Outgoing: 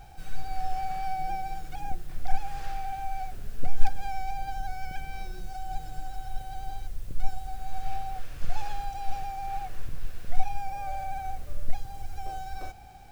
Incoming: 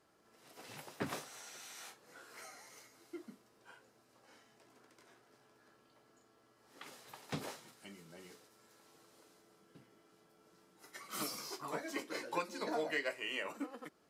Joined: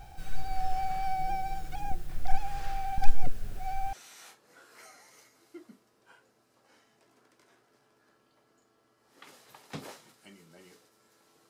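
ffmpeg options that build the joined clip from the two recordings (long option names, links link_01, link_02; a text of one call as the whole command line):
ffmpeg -i cue0.wav -i cue1.wav -filter_complex "[0:a]apad=whole_dur=11.49,atrim=end=11.49,asplit=2[link_01][link_02];[link_01]atrim=end=2.982[link_03];[link_02]atrim=start=2.978:end=3.932,asetpts=PTS-STARTPTS,areverse[link_04];[1:a]atrim=start=1.518:end=9.08[link_05];[link_03][link_04]acrossfade=duration=0.004:curve1=hsin:curve2=hsin[link_06];[link_06][link_05]acrossfade=duration=0.004:curve1=hsin:curve2=hsin" out.wav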